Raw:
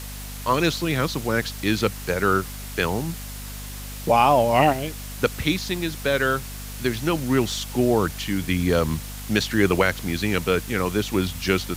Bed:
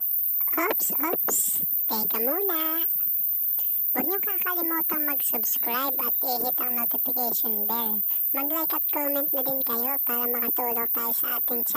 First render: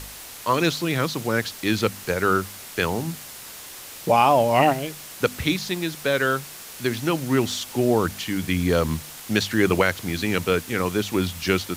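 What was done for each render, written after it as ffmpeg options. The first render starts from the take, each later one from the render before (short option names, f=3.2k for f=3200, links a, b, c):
-af "bandreject=f=50:t=h:w=4,bandreject=f=100:t=h:w=4,bandreject=f=150:t=h:w=4,bandreject=f=200:t=h:w=4,bandreject=f=250:t=h:w=4"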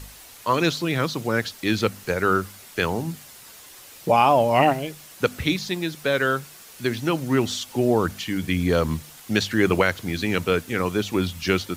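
-af "afftdn=nr=7:nf=-40"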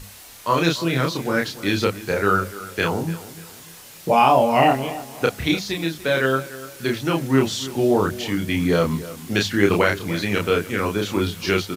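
-filter_complex "[0:a]asplit=2[a][b];[b]adelay=30,volume=-2.5dB[c];[a][c]amix=inputs=2:normalize=0,asplit=2[d][e];[e]adelay=294,lowpass=f=3.3k:p=1,volume=-16dB,asplit=2[f][g];[g]adelay=294,lowpass=f=3.3k:p=1,volume=0.4,asplit=2[h][i];[i]adelay=294,lowpass=f=3.3k:p=1,volume=0.4,asplit=2[j][k];[k]adelay=294,lowpass=f=3.3k:p=1,volume=0.4[l];[d][f][h][j][l]amix=inputs=5:normalize=0"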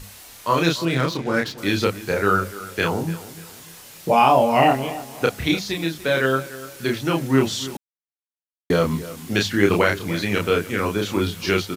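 -filter_complex "[0:a]asettb=1/sr,asplit=3[a][b][c];[a]atrim=end=0.854[d];[b]atrim=start=0.85:end=1.58,asetpts=PTS-STARTPTS,afade=t=in:d=0.004:c=qsin,afade=t=out:st=0.726:d=0.004:c=qsin,adynamicsmooth=sensitivity=7.5:basefreq=2.7k[e];[c]atrim=start=1.576[f];[d][e]acrossfade=d=0.004:c1=hsin:c2=qsin[g];[g][f]acrossfade=d=0.004:c1=qsin:c2=hsin,asplit=3[h][i][j];[h]atrim=end=7.77,asetpts=PTS-STARTPTS,afade=t=out:st=7.766:d=0.004:c=hsin[k];[i]atrim=start=7.77:end=8.7,asetpts=PTS-STARTPTS,volume=0[l];[j]atrim=start=8.7,asetpts=PTS-STARTPTS,afade=t=in:d=0.004:c=hsin[m];[k][l][m]concat=n=3:v=0:a=1"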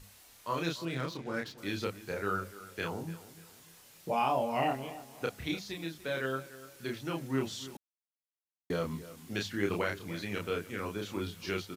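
-af "volume=-14.5dB"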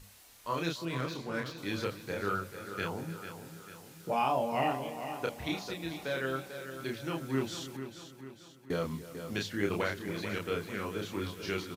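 -af "aecho=1:1:444|888|1332|1776|2220:0.316|0.158|0.0791|0.0395|0.0198"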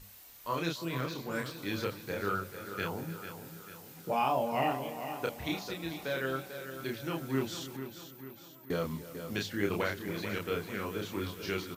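-filter_complex "[1:a]volume=-31.5dB[a];[0:a][a]amix=inputs=2:normalize=0"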